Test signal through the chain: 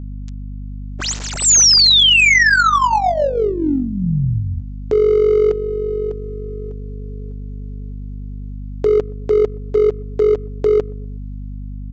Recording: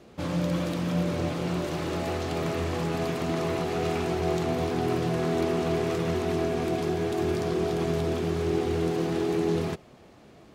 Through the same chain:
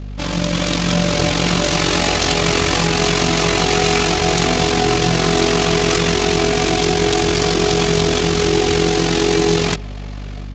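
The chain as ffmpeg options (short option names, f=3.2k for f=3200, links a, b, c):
-filter_complex "[0:a]aecho=1:1:6.9:0.43,dynaudnorm=f=520:g=3:m=8dB,asplit=2[a][b];[b]alimiter=limit=-15.5dB:level=0:latency=1:release=428,volume=0dB[c];[a][c]amix=inputs=2:normalize=0,adynamicsmooth=sensitivity=5:basefreq=3.5k,crystalizer=i=9:c=0,tremolo=f=45:d=0.621,asoftclip=type=hard:threshold=-8dB,aeval=exprs='val(0)+0.0447*(sin(2*PI*50*n/s)+sin(2*PI*2*50*n/s)/2+sin(2*PI*3*50*n/s)/3+sin(2*PI*4*50*n/s)/4+sin(2*PI*5*50*n/s)/5)':c=same,asplit=2[d][e];[e]adelay=123,lowpass=f=810:p=1,volume=-23dB,asplit=2[f][g];[g]adelay=123,lowpass=f=810:p=1,volume=0.47,asplit=2[h][i];[i]adelay=123,lowpass=f=810:p=1,volume=0.47[j];[d][f][h][j]amix=inputs=4:normalize=0,aresample=16000,aresample=44100"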